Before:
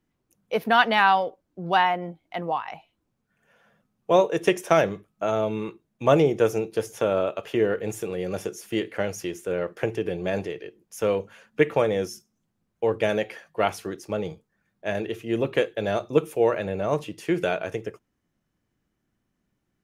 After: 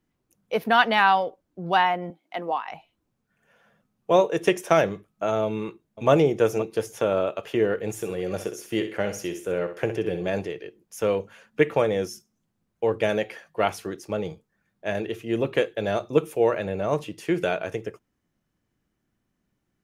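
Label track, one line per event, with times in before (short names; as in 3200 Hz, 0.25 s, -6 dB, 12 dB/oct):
2.100000	2.690000	HPF 210 Hz 24 dB/oct
5.450000	6.100000	echo throw 0.52 s, feedback 30%, level -14 dB
7.920000	10.290000	flutter echo walls apart 10.9 m, dies away in 0.38 s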